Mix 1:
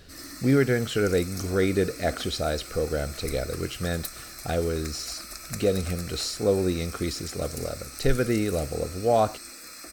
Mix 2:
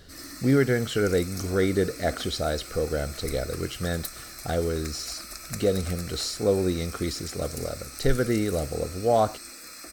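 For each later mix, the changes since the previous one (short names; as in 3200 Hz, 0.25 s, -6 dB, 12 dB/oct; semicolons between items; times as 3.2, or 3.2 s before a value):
speech: add Butterworth band-stop 2500 Hz, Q 6.1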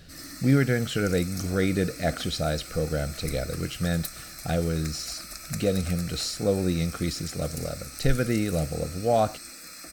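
speech: remove Butterworth band-stop 2500 Hz, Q 6.1; master: add thirty-one-band EQ 160 Hz +9 dB, 400 Hz -7 dB, 1000 Hz -6 dB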